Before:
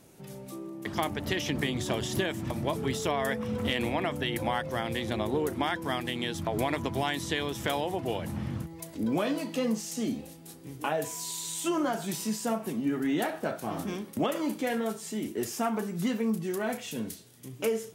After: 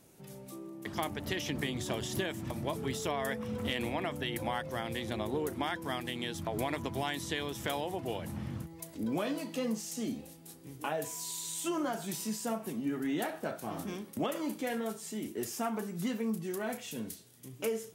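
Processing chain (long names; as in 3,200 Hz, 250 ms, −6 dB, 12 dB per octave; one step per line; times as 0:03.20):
high-shelf EQ 7,400 Hz +4 dB
level −5 dB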